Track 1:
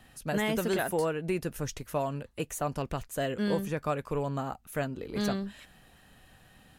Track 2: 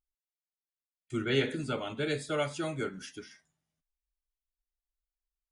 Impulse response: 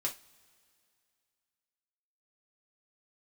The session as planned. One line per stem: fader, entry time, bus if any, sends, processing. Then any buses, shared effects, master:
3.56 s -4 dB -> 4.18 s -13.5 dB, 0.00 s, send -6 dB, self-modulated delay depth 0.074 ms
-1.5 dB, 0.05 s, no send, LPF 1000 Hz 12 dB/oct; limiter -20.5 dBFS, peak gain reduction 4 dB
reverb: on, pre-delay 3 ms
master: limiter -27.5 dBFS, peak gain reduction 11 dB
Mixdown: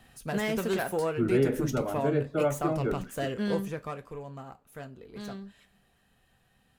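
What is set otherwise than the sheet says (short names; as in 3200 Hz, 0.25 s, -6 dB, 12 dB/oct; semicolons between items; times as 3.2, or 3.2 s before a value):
stem 2 -1.5 dB -> +5.5 dB; master: missing limiter -27.5 dBFS, peak gain reduction 11 dB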